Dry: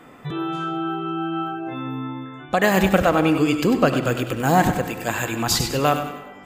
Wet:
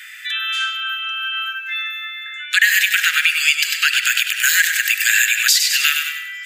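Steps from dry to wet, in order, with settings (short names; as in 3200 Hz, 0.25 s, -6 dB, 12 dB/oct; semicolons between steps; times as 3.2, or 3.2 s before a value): steep high-pass 1600 Hz 72 dB/oct; compressor 6:1, threshold -30 dBFS, peak gain reduction 12 dB; maximiser +20 dB; gain -1 dB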